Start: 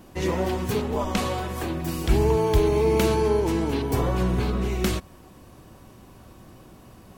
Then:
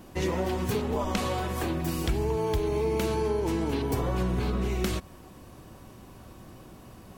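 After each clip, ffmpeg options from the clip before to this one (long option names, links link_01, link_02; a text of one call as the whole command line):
ffmpeg -i in.wav -af "acompressor=threshold=-24dB:ratio=6" out.wav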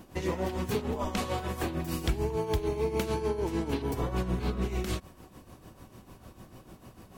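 ffmpeg -i in.wav -af "tremolo=f=6.7:d=0.66" out.wav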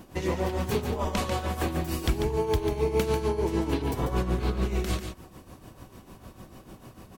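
ffmpeg -i in.wav -af "aecho=1:1:143:0.447,volume=2.5dB" out.wav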